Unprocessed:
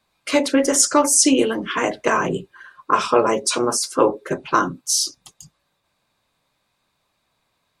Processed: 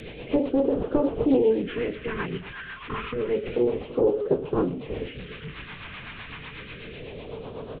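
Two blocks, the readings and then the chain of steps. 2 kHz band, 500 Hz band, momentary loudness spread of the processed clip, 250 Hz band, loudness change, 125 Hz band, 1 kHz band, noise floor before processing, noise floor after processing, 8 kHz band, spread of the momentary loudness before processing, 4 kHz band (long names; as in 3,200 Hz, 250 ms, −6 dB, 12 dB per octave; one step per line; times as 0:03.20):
−9.5 dB, −3.0 dB, 16 LU, −4.0 dB, −7.5 dB, +1.0 dB, −15.5 dB, −71 dBFS, −42 dBFS, below −40 dB, 9 LU, −16.0 dB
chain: linear delta modulator 16 kbit/s, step −27.5 dBFS
parametric band 450 Hz +13.5 dB 0.41 octaves
brickwall limiter −10 dBFS, peak gain reduction 10.5 dB
rotating-speaker cabinet horn 8 Hz
on a send: single-tap delay 338 ms −21.5 dB
on the sum: all-pass phaser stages 2, 0.29 Hz, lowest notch 460–2,000 Hz
highs frequency-modulated by the lows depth 0.2 ms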